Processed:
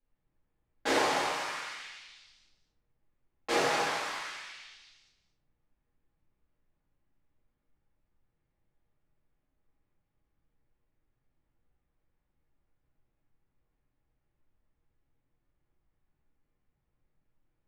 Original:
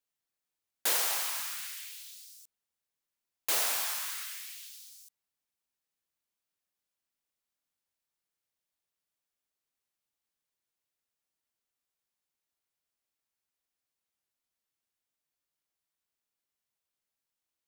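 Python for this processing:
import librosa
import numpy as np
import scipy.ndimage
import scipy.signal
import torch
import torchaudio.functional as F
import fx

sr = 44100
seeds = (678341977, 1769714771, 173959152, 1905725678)

p1 = fx.env_lowpass(x, sr, base_hz=2800.0, full_db=-33.5)
p2 = scipy.signal.sosfilt(scipy.signal.butter(2, 6700.0, 'lowpass', fs=sr, output='sos'), p1)
p3 = fx.tilt_eq(p2, sr, slope=-4.0)
p4 = p3 + fx.echo_single(p3, sr, ms=225, db=-11.5, dry=0)
y = fx.room_shoebox(p4, sr, seeds[0], volume_m3=99.0, walls='mixed', distance_m=2.2)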